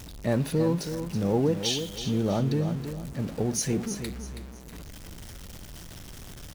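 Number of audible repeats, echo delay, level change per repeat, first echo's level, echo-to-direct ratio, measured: 3, 324 ms, -9.5 dB, -9.0 dB, -8.5 dB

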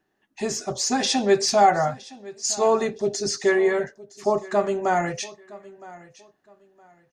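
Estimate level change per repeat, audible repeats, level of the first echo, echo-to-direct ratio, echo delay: -12.0 dB, 2, -20.0 dB, -19.5 dB, 965 ms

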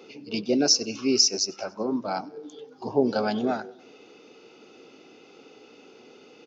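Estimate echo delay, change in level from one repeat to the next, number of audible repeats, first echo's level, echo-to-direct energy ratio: 96 ms, -5.0 dB, 3, -24.0 dB, -22.5 dB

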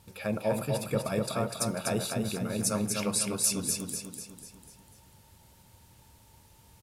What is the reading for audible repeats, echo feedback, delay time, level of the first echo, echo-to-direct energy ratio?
6, 49%, 247 ms, -4.0 dB, -3.0 dB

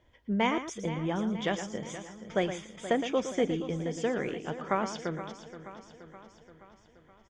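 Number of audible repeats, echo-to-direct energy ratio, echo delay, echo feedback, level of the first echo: 9, -7.5 dB, 114 ms, no regular repeats, -10.0 dB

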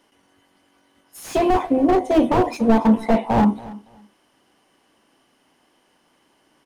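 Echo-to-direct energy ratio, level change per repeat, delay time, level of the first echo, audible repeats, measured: -19.5 dB, -14.0 dB, 282 ms, -19.5 dB, 2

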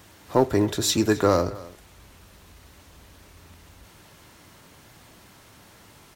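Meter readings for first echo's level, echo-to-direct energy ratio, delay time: -20.0 dB, -20.0 dB, 263 ms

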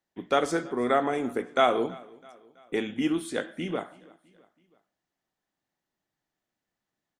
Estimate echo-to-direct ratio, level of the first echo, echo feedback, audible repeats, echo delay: -22.0 dB, -23.5 dB, 52%, 3, 328 ms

